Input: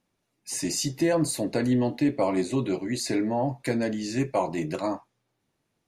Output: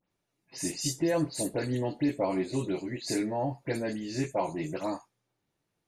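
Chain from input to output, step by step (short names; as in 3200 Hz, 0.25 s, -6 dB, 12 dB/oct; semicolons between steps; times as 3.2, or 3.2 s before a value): spectral delay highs late, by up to 0.104 s; gain -4 dB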